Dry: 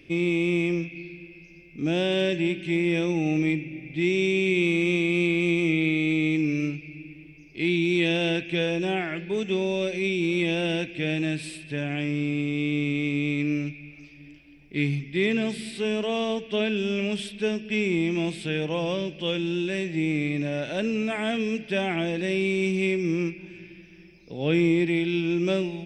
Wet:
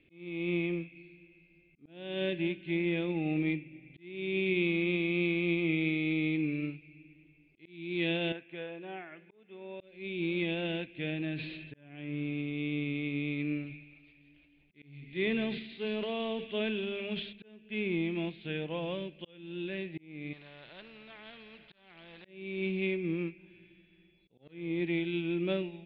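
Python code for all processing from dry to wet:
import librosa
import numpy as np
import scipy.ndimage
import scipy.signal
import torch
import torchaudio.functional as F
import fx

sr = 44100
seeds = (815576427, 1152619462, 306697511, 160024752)

y = fx.chain(x, sr, fx.lowpass(hz=1300.0, slope=12),
    fx.tilt_eq(slope=4.0), at=(8.32, 9.8))
y = fx.chain(y, sr, fx.air_absorb(metres=110.0),
    fx.sustainer(db_per_s=25.0), at=(11.1, 12.26))
y = fx.chain(y, sr, fx.hum_notches(base_hz=50, count=7),
    fx.transient(attack_db=-1, sustain_db=8),
    fx.echo_wet_highpass(ms=168, feedback_pct=60, hz=3000.0, wet_db=-6.5), at=(13.63, 17.33))
y = fx.chain(y, sr, fx.peak_eq(hz=270.0, db=-12.0, octaves=0.28),
    fx.clip_hard(threshold_db=-21.0),
    fx.spectral_comp(ratio=2.0), at=(20.33, 22.25))
y = fx.dmg_tone(y, sr, hz=3400.0, level_db=-60.0, at=(23.46, 24.51), fade=0.02)
y = fx.clip_hard(y, sr, threshold_db=-19.0, at=(23.46, 24.51), fade=0.02)
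y = scipy.signal.sosfilt(scipy.signal.butter(12, 4200.0, 'lowpass', fs=sr, output='sos'), y)
y = fx.auto_swell(y, sr, attack_ms=417.0)
y = fx.upward_expand(y, sr, threshold_db=-37.0, expansion=1.5)
y = y * 10.0 ** (-6.0 / 20.0)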